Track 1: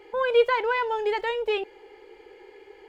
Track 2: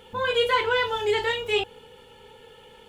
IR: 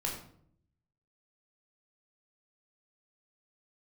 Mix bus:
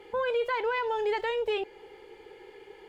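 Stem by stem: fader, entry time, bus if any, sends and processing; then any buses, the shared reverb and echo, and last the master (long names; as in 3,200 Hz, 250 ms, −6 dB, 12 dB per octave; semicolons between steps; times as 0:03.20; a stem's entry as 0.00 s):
−1.0 dB, 0.00 s, no send, brickwall limiter −21 dBFS, peak gain reduction 11 dB
−12.0 dB, 0.00 s, no send, downward compressor, threshold −32 dBFS, peak gain reduction 14 dB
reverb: not used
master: no processing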